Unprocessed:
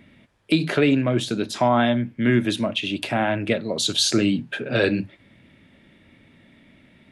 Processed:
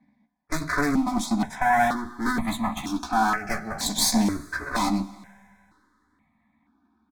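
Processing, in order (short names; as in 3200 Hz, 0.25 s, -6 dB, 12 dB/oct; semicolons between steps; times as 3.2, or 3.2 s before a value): minimum comb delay 4 ms; low-pass opened by the level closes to 2100 Hz, open at -15 dBFS; gate -51 dBFS, range -12 dB; HPF 170 Hz 6 dB/oct; one-sided clip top -28 dBFS; fixed phaser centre 1200 Hz, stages 4; doubler 14 ms -5 dB; Schroeder reverb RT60 2.2 s, combs from 25 ms, DRR 17.5 dB; step phaser 2.1 Hz 360–1500 Hz; gain +8 dB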